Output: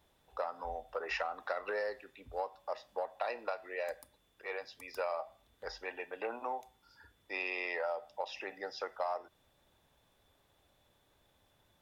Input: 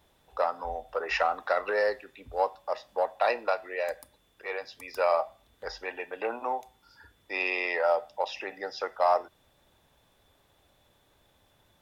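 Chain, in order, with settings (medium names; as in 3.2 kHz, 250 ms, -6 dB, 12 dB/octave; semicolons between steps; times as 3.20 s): compression 6:1, threshold -27 dBFS, peak gain reduction 8.5 dB; trim -5.5 dB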